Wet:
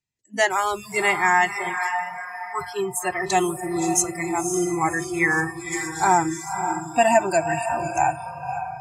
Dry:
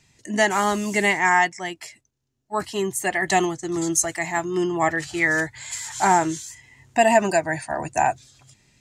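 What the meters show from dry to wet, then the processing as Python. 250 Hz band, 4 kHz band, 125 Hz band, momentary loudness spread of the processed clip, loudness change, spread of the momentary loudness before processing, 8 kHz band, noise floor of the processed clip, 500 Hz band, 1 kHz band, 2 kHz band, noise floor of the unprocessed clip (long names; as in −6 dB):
−1.0 dB, −2.0 dB, −0.5 dB, 11 LU, −0.5 dB, 13 LU, 0.0 dB, −39 dBFS, −0.5 dB, +1.0 dB, −0.5 dB, −74 dBFS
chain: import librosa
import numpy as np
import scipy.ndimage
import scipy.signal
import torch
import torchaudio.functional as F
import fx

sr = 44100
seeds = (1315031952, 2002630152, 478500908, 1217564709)

y = fx.echo_diffused(x, sr, ms=544, feedback_pct=52, wet_db=-5.5)
y = fx.noise_reduce_blind(y, sr, reduce_db=29)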